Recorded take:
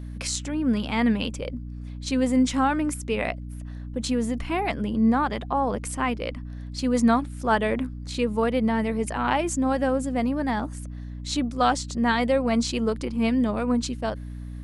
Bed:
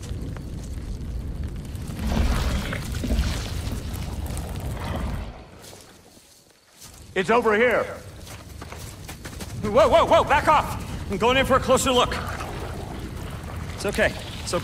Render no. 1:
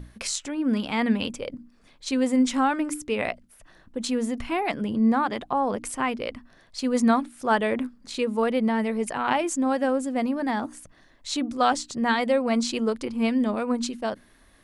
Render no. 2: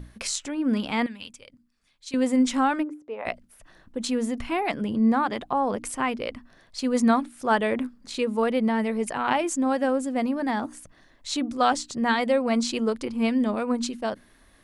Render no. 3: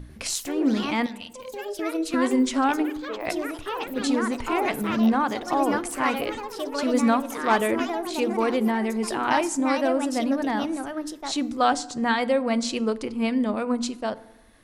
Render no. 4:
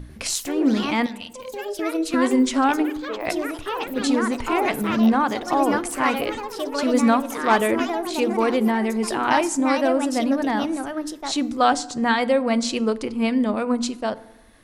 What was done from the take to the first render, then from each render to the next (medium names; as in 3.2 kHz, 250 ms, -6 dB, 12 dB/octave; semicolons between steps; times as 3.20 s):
hum notches 60/120/180/240/300 Hz
1.06–2.14 s: amplifier tone stack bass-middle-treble 5-5-5; 2.82–3.25 s: band-pass filter 320 Hz -> 960 Hz, Q 2.1
FDN reverb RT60 0.96 s, low-frequency decay 1.3×, high-frequency decay 0.55×, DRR 15.5 dB; ever faster or slower copies 95 ms, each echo +4 st, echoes 3, each echo -6 dB
trim +3 dB